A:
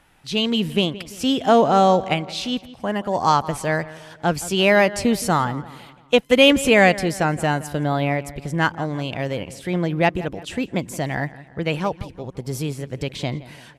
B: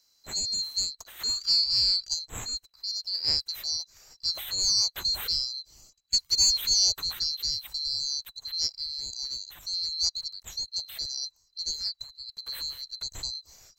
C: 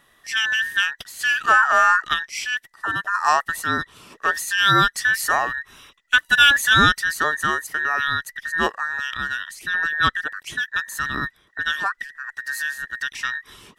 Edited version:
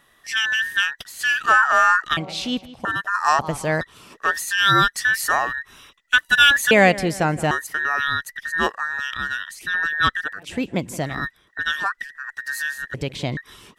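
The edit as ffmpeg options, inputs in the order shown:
ffmpeg -i take0.wav -i take1.wav -i take2.wav -filter_complex "[0:a]asplit=5[link_01][link_02][link_03][link_04][link_05];[2:a]asplit=6[link_06][link_07][link_08][link_09][link_10][link_11];[link_06]atrim=end=2.172[link_12];[link_01]atrim=start=2.168:end=2.852[link_13];[link_07]atrim=start=2.848:end=3.392[link_14];[link_02]atrim=start=3.388:end=3.812[link_15];[link_08]atrim=start=3.808:end=6.712[link_16];[link_03]atrim=start=6.708:end=7.512[link_17];[link_09]atrim=start=7.508:end=10.57[link_18];[link_04]atrim=start=10.33:end=11.25[link_19];[link_10]atrim=start=11.01:end=12.942[link_20];[link_05]atrim=start=12.938:end=13.372[link_21];[link_11]atrim=start=13.368[link_22];[link_12][link_13]acrossfade=duration=0.004:curve1=hsin:curve2=hsin[link_23];[link_23][link_14]acrossfade=duration=0.004:curve1=hsin:curve2=hsin[link_24];[link_24][link_15]acrossfade=duration=0.004:curve1=hsin:curve2=hsin[link_25];[link_25][link_16]acrossfade=duration=0.004:curve1=hsin:curve2=hsin[link_26];[link_26][link_17]acrossfade=duration=0.004:curve1=hsin:curve2=hsin[link_27];[link_27][link_18]acrossfade=duration=0.004:curve1=hsin:curve2=hsin[link_28];[link_28][link_19]acrossfade=duration=0.24:curve1=tri:curve2=tri[link_29];[link_29][link_20]acrossfade=duration=0.24:curve1=tri:curve2=tri[link_30];[link_30][link_21]acrossfade=duration=0.004:curve1=hsin:curve2=hsin[link_31];[link_31][link_22]acrossfade=duration=0.004:curve1=hsin:curve2=hsin" out.wav

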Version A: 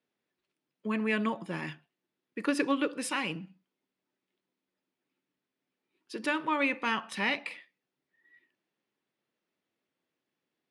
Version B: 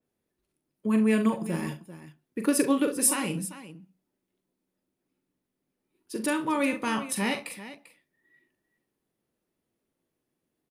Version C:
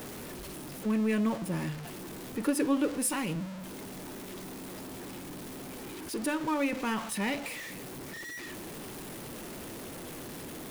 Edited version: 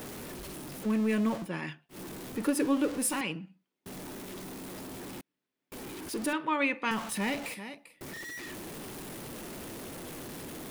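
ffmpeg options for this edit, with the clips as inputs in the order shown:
ffmpeg -i take0.wav -i take1.wav -i take2.wav -filter_complex "[0:a]asplit=4[link_01][link_02][link_03][link_04];[2:a]asplit=6[link_05][link_06][link_07][link_08][link_09][link_10];[link_05]atrim=end=1.5[link_11];[link_01]atrim=start=1.4:end=1.99[link_12];[link_06]atrim=start=1.89:end=3.212[link_13];[link_02]atrim=start=3.208:end=3.862[link_14];[link_07]atrim=start=3.858:end=5.212[link_15];[link_03]atrim=start=5.208:end=5.722[link_16];[link_08]atrim=start=5.718:end=6.332[link_17];[link_04]atrim=start=6.328:end=6.912[link_18];[link_09]atrim=start=6.908:end=7.542[link_19];[1:a]atrim=start=7.538:end=8.012[link_20];[link_10]atrim=start=8.008[link_21];[link_11][link_12]acrossfade=duration=0.1:curve1=tri:curve2=tri[link_22];[link_22][link_13]acrossfade=duration=0.1:curve1=tri:curve2=tri[link_23];[link_23][link_14]acrossfade=duration=0.004:curve1=hsin:curve2=hsin[link_24];[link_24][link_15]acrossfade=duration=0.004:curve1=hsin:curve2=hsin[link_25];[link_25][link_16]acrossfade=duration=0.004:curve1=hsin:curve2=hsin[link_26];[link_26][link_17]acrossfade=duration=0.004:curve1=hsin:curve2=hsin[link_27];[link_27][link_18]acrossfade=duration=0.004:curve1=hsin:curve2=hsin[link_28];[link_28][link_19]acrossfade=duration=0.004:curve1=hsin:curve2=hsin[link_29];[link_29][link_20]acrossfade=duration=0.004:curve1=hsin:curve2=hsin[link_30];[link_30][link_21]acrossfade=duration=0.004:curve1=hsin:curve2=hsin" out.wav

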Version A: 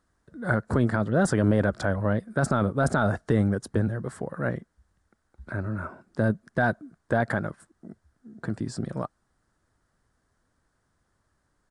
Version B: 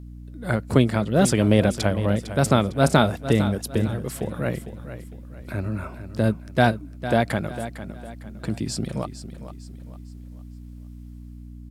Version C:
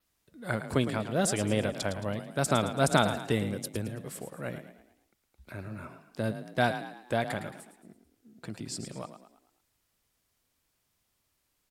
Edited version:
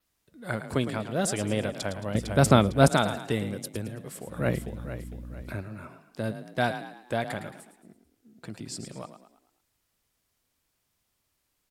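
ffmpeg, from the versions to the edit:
ffmpeg -i take0.wav -i take1.wav -i take2.wav -filter_complex "[1:a]asplit=2[link_01][link_02];[2:a]asplit=3[link_03][link_04][link_05];[link_03]atrim=end=2.152[link_06];[link_01]atrim=start=2.148:end=2.882[link_07];[link_04]atrim=start=2.878:end=4.49[link_08];[link_02]atrim=start=4.25:end=5.65[link_09];[link_05]atrim=start=5.41[link_10];[link_06][link_07]acrossfade=duration=0.004:curve1=hsin:curve2=hsin[link_11];[link_11][link_08]acrossfade=duration=0.004:curve1=hsin:curve2=hsin[link_12];[link_12][link_09]acrossfade=duration=0.24:curve1=tri:curve2=tri[link_13];[link_13][link_10]acrossfade=duration=0.24:curve1=tri:curve2=tri" out.wav

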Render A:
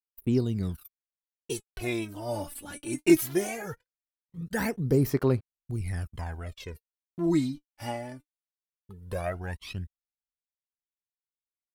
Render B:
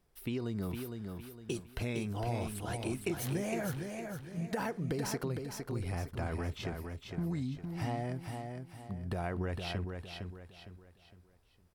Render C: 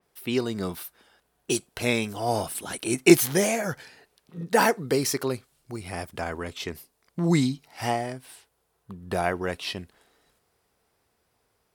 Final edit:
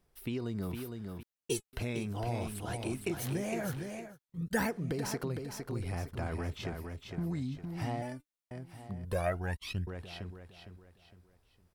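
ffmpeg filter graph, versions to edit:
ffmpeg -i take0.wav -i take1.wav -filter_complex "[0:a]asplit=4[link_01][link_02][link_03][link_04];[1:a]asplit=5[link_05][link_06][link_07][link_08][link_09];[link_05]atrim=end=1.232[link_10];[link_01]atrim=start=1.228:end=1.732[link_11];[link_06]atrim=start=1.728:end=4.19[link_12];[link_02]atrim=start=3.95:end=4.78[link_13];[link_07]atrim=start=4.54:end=8.022[link_14];[link_03]atrim=start=8.018:end=8.512[link_15];[link_08]atrim=start=8.508:end=9.052[link_16];[link_04]atrim=start=9.048:end=9.872[link_17];[link_09]atrim=start=9.868[link_18];[link_10][link_11]acrossfade=duration=0.004:curve1=hsin:curve2=hsin[link_19];[link_19][link_12]acrossfade=duration=0.004:curve1=hsin:curve2=hsin[link_20];[link_20][link_13]acrossfade=duration=0.24:curve1=tri:curve2=tri[link_21];[link_21][link_14]acrossfade=duration=0.24:curve1=tri:curve2=tri[link_22];[link_22][link_15]acrossfade=duration=0.004:curve1=hsin:curve2=hsin[link_23];[link_23][link_16]acrossfade=duration=0.004:curve1=hsin:curve2=hsin[link_24];[link_24][link_17]acrossfade=duration=0.004:curve1=hsin:curve2=hsin[link_25];[link_25][link_18]acrossfade=duration=0.004:curve1=hsin:curve2=hsin" out.wav

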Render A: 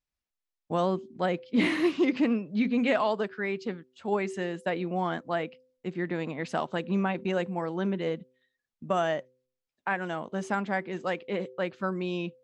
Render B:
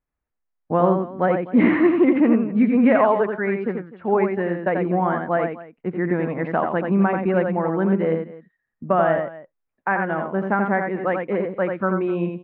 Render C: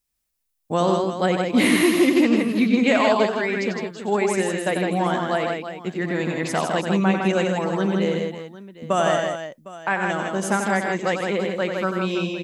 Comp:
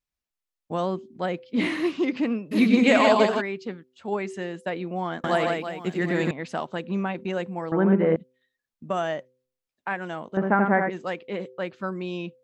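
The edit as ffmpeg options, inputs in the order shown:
ffmpeg -i take0.wav -i take1.wav -i take2.wav -filter_complex "[2:a]asplit=2[link_01][link_02];[1:a]asplit=2[link_03][link_04];[0:a]asplit=5[link_05][link_06][link_07][link_08][link_09];[link_05]atrim=end=2.53[link_10];[link_01]atrim=start=2.51:end=3.42[link_11];[link_06]atrim=start=3.4:end=5.242[link_12];[link_02]atrim=start=5.238:end=6.312[link_13];[link_07]atrim=start=6.308:end=7.722[link_14];[link_03]atrim=start=7.718:end=8.162[link_15];[link_08]atrim=start=8.158:end=10.372[link_16];[link_04]atrim=start=10.368:end=10.902[link_17];[link_09]atrim=start=10.898[link_18];[link_10][link_11]acrossfade=duration=0.02:curve1=tri:curve2=tri[link_19];[link_19][link_12]acrossfade=duration=0.02:curve1=tri:curve2=tri[link_20];[link_20][link_13]acrossfade=duration=0.004:curve1=hsin:curve2=hsin[link_21];[link_21][link_14]acrossfade=duration=0.004:curve1=hsin:curve2=hsin[link_22];[link_22][link_15]acrossfade=duration=0.004:curve1=hsin:curve2=hsin[link_23];[link_23][link_16]acrossfade=duration=0.004:curve1=hsin:curve2=hsin[link_24];[link_24][link_17]acrossfade=duration=0.004:curve1=hsin:curve2=hsin[link_25];[link_25][link_18]acrossfade=duration=0.004:curve1=hsin:curve2=hsin" out.wav

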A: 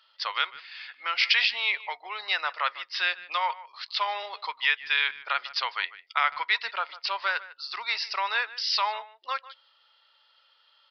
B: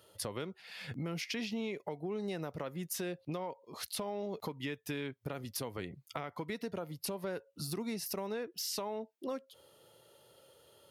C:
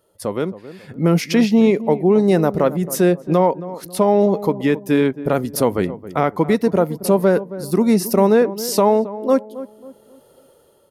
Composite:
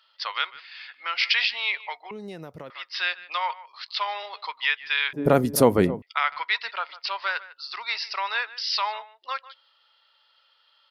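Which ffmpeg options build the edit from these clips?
ffmpeg -i take0.wav -i take1.wav -i take2.wav -filter_complex "[0:a]asplit=3[link_01][link_02][link_03];[link_01]atrim=end=2.112[link_04];[1:a]atrim=start=2.108:end=2.702[link_05];[link_02]atrim=start=2.698:end=5.132[link_06];[2:a]atrim=start=5.128:end=6.022[link_07];[link_03]atrim=start=6.018[link_08];[link_04][link_05]acrossfade=duration=0.004:curve1=hsin:curve2=hsin[link_09];[link_09][link_06]acrossfade=duration=0.004:curve1=hsin:curve2=hsin[link_10];[link_10][link_07]acrossfade=duration=0.004:curve1=hsin:curve2=hsin[link_11];[link_11][link_08]acrossfade=duration=0.004:curve1=hsin:curve2=hsin" out.wav

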